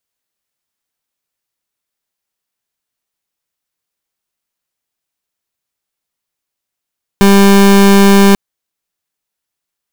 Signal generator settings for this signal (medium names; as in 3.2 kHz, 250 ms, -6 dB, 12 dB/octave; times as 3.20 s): pulse 198 Hz, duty 30% -5.5 dBFS 1.14 s